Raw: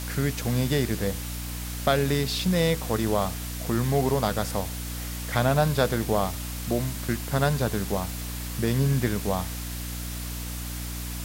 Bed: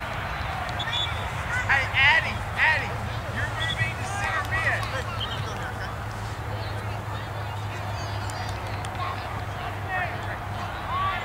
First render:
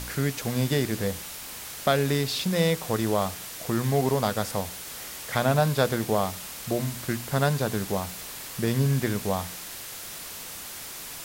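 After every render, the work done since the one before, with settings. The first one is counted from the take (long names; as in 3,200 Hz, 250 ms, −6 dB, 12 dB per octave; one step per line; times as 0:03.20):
hum removal 60 Hz, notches 5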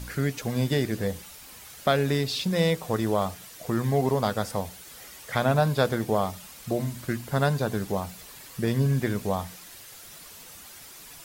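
broadband denoise 9 dB, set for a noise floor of −39 dBFS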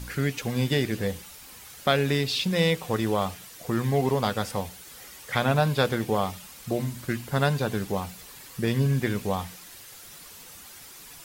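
notch filter 640 Hz, Q 12
dynamic equaliser 2,700 Hz, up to +6 dB, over −47 dBFS, Q 1.5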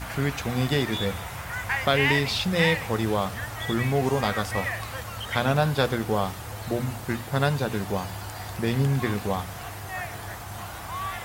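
mix in bed −6 dB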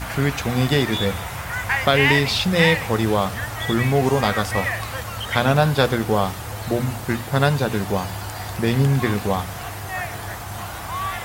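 level +5.5 dB
brickwall limiter −2 dBFS, peak gain reduction 1.5 dB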